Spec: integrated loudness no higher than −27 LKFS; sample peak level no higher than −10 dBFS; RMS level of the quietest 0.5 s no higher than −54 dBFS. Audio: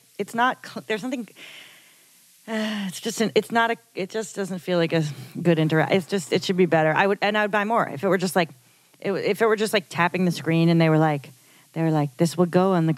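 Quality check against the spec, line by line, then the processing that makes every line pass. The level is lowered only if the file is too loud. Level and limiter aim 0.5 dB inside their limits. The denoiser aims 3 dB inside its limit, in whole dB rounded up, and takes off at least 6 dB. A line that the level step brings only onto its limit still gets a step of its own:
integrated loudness −23.0 LKFS: out of spec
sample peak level −3.5 dBFS: out of spec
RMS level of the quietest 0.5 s −55 dBFS: in spec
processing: level −4.5 dB
brickwall limiter −10.5 dBFS

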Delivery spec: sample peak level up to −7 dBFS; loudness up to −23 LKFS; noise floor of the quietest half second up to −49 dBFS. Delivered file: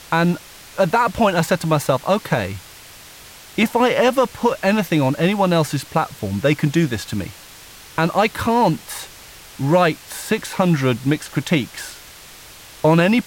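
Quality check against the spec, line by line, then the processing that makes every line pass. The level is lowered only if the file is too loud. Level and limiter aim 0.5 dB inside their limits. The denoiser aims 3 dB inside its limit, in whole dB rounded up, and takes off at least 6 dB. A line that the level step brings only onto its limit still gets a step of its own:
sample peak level −5.0 dBFS: out of spec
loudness −19.0 LKFS: out of spec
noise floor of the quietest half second −41 dBFS: out of spec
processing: broadband denoise 7 dB, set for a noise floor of −41 dBFS
level −4.5 dB

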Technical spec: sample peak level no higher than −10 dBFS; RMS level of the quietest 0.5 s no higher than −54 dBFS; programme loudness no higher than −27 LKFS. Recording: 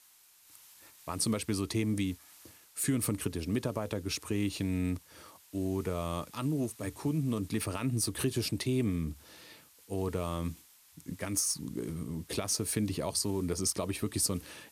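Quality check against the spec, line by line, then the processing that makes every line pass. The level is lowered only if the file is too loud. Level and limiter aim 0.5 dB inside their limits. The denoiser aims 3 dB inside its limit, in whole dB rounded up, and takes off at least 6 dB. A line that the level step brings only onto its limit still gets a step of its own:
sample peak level −16.5 dBFS: in spec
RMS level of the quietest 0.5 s −61 dBFS: in spec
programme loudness −33.5 LKFS: in spec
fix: no processing needed

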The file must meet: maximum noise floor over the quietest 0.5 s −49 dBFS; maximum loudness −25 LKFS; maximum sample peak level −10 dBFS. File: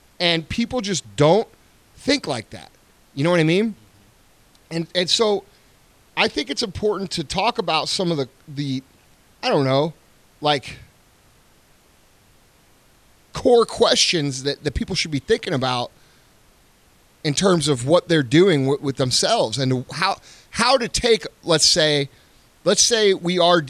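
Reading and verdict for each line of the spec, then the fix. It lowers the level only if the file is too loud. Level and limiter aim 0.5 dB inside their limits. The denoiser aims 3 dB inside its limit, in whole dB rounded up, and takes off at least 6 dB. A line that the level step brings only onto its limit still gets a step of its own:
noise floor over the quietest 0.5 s −55 dBFS: in spec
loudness −19.5 LKFS: out of spec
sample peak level −3.5 dBFS: out of spec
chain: level −6 dB
brickwall limiter −10.5 dBFS

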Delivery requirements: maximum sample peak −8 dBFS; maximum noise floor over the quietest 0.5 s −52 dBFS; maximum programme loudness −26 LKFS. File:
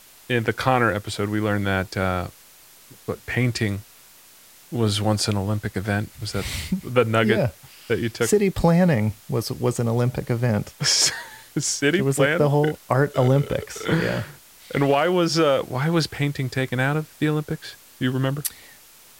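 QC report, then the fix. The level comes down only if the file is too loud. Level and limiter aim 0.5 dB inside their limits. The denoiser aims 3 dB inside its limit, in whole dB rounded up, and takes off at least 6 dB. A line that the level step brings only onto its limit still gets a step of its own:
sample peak −4.0 dBFS: out of spec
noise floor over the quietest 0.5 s −50 dBFS: out of spec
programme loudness −22.5 LKFS: out of spec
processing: level −4 dB
brickwall limiter −8.5 dBFS

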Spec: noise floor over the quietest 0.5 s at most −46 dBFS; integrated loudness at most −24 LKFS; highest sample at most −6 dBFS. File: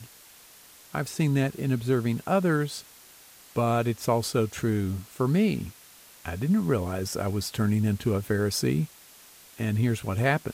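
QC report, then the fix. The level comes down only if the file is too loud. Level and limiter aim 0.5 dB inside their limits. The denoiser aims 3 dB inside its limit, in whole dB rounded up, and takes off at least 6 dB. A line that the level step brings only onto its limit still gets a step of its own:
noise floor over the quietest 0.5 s −52 dBFS: in spec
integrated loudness −27.0 LKFS: in spec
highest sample −10.0 dBFS: in spec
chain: no processing needed

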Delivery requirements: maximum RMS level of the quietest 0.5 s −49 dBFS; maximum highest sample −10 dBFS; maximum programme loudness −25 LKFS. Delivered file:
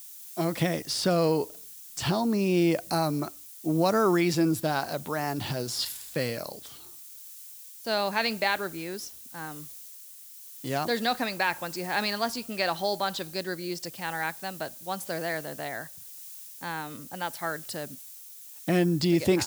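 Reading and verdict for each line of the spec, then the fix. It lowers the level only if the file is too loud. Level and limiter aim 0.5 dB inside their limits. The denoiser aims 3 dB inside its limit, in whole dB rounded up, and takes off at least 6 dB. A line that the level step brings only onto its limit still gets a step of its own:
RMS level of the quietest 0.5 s −47 dBFS: out of spec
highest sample −10.5 dBFS: in spec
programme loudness −29.0 LKFS: in spec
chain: broadband denoise 6 dB, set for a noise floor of −47 dBFS

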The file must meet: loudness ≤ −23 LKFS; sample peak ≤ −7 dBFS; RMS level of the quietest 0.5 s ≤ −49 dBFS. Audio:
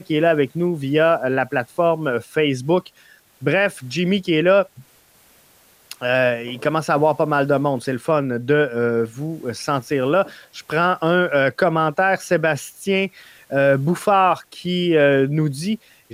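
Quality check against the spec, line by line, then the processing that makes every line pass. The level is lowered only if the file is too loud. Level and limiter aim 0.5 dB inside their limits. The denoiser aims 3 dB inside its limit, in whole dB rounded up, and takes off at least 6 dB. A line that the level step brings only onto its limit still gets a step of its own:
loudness −19.5 LKFS: out of spec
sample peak −6.0 dBFS: out of spec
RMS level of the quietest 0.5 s −54 dBFS: in spec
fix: level −4 dB

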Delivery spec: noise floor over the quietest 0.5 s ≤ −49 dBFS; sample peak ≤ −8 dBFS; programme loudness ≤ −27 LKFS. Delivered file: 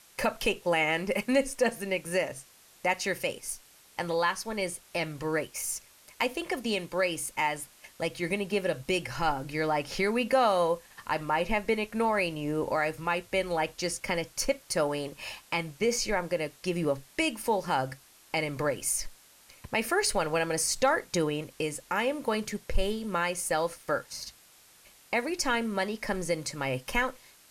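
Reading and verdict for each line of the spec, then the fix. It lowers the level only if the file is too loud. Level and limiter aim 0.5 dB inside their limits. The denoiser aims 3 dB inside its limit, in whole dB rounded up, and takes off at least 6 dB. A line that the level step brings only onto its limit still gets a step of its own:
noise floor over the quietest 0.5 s −58 dBFS: in spec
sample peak −14.0 dBFS: in spec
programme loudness −30.0 LKFS: in spec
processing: no processing needed

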